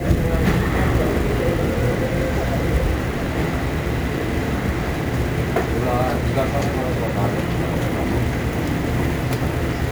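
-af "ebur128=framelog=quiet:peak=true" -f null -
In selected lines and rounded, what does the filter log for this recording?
Integrated loudness:
  I:         -21.2 LUFS
  Threshold: -31.2 LUFS
Loudness range:
  LRA:         1.8 LU
  Threshold: -41.4 LUFS
  LRA low:   -22.2 LUFS
  LRA high:  -20.4 LUFS
True peak:
  Peak:       -4.3 dBFS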